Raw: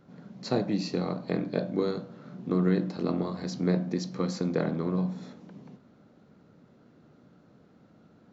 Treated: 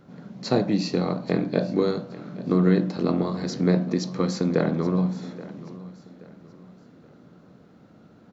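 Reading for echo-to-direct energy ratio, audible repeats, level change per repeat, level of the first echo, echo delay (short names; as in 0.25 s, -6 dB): -17.5 dB, 2, -9.0 dB, -18.0 dB, 0.827 s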